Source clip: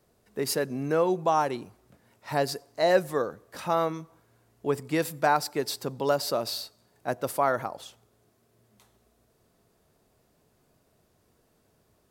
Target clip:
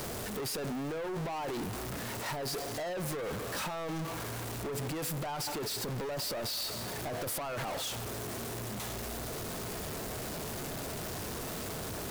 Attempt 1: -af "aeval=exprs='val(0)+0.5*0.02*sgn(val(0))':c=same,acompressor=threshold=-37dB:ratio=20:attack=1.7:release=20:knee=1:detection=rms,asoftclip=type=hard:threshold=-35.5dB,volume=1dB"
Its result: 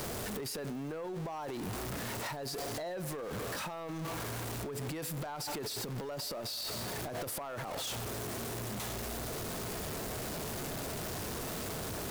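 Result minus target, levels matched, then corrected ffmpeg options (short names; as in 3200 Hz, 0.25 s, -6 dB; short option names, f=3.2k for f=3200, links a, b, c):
compressor: peak gain reduction +6.5 dB
-af "aeval=exprs='val(0)+0.5*0.02*sgn(val(0))':c=same,acompressor=threshold=-30dB:ratio=20:attack=1.7:release=20:knee=1:detection=rms,asoftclip=type=hard:threshold=-35.5dB,volume=1dB"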